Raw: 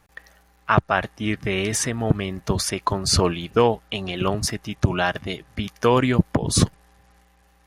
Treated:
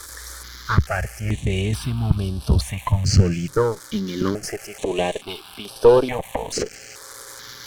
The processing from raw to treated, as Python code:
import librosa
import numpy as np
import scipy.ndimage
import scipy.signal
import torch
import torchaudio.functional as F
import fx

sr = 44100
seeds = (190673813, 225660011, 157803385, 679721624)

p1 = x + 0.5 * 10.0 ** (-17.5 / 20.0) * np.diff(np.sign(x), prepend=np.sign(x[:1]))
p2 = fx.low_shelf(p1, sr, hz=110.0, db=9.5)
p3 = fx.notch(p2, sr, hz=1900.0, q=18.0)
p4 = fx.rider(p3, sr, range_db=10, speed_s=2.0)
p5 = p3 + (p4 * librosa.db_to_amplitude(1.0))
p6 = np.clip(10.0 ** (4.0 / 20.0) * p5, -1.0, 1.0) / 10.0 ** (4.0 / 20.0)
p7 = fx.filter_sweep_highpass(p6, sr, from_hz=65.0, to_hz=440.0, start_s=2.6, end_s=4.8, q=3.5)
p8 = fx.cheby_harmonics(p7, sr, harmonics=(6,), levels_db=(-18,), full_scale_db=9.5)
p9 = fx.air_absorb(p8, sr, metres=62.0)
p10 = fx.phaser_held(p9, sr, hz=2.3, low_hz=730.0, high_hz=6900.0)
y = p10 * librosa.db_to_amplitude(-7.5)